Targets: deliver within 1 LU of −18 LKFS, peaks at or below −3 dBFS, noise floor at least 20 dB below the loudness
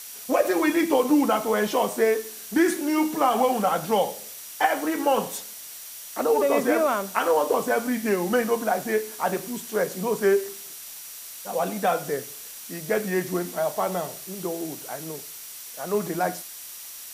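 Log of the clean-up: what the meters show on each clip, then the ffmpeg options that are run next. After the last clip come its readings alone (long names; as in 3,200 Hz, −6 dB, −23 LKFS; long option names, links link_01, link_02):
interfering tone 5,800 Hz; level of the tone −50 dBFS; background noise floor −40 dBFS; target noise floor −45 dBFS; integrated loudness −24.5 LKFS; sample peak −5.5 dBFS; target loudness −18.0 LKFS
→ -af "bandreject=frequency=5800:width=30"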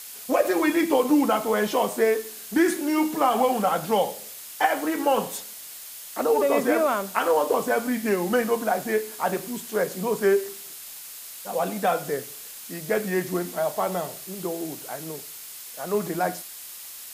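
interfering tone none found; background noise floor −41 dBFS; target noise floor −45 dBFS
→ -af "afftdn=noise_reduction=6:noise_floor=-41"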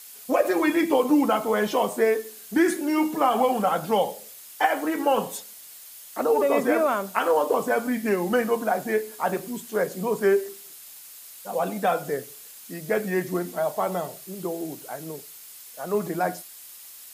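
background noise floor −45 dBFS; integrated loudness −24.5 LKFS; sample peak −5.5 dBFS; target loudness −18.0 LKFS
→ -af "volume=6.5dB,alimiter=limit=-3dB:level=0:latency=1"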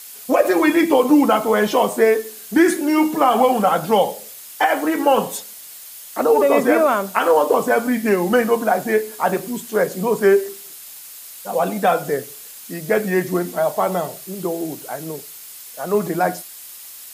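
integrated loudness −18.0 LKFS; sample peak −3.0 dBFS; background noise floor −38 dBFS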